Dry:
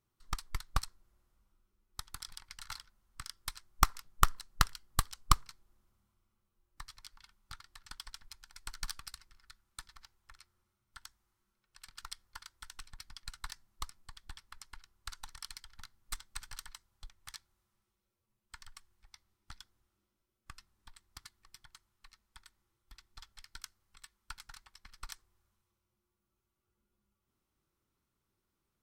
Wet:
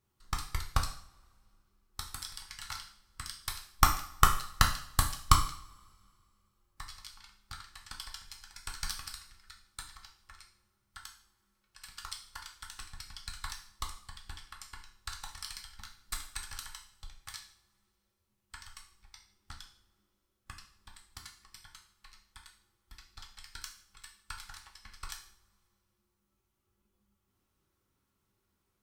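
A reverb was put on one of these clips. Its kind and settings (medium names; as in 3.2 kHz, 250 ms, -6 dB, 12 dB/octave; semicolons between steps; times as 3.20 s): two-slope reverb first 0.51 s, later 2.3 s, from -27 dB, DRR 1 dB; trim +2 dB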